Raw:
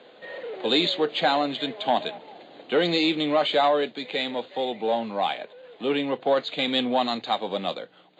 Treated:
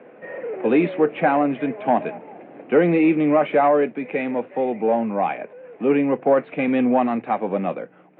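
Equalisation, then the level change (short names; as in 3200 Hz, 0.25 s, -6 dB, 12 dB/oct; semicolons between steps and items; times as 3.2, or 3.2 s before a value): HPF 130 Hz; Chebyshev low-pass 2500 Hz, order 5; low shelf 430 Hz +10 dB; +2.0 dB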